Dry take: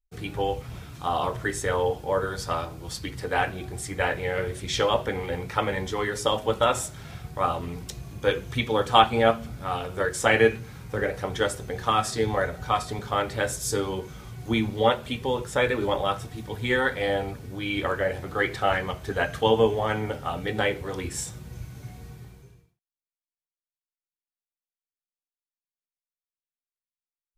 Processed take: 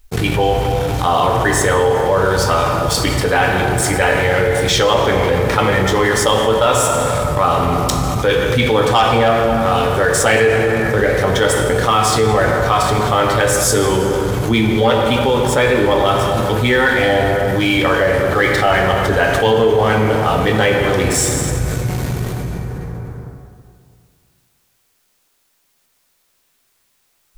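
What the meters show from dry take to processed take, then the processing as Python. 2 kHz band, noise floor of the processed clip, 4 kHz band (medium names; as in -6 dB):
+12.0 dB, -62 dBFS, +11.0 dB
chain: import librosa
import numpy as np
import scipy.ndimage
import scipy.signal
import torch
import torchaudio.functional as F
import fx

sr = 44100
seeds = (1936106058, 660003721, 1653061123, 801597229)

y = fx.leveller(x, sr, passes=2)
y = fx.rev_plate(y, sr, seeds[0], rt60_s=2.2, hf_ratio=0.6, predelay_ms=0, drr_db=4.0)
y = fx.env_flatten(y, sr, amount_pct=70)
y = y * librosa.db_to_amplitude(-3.5)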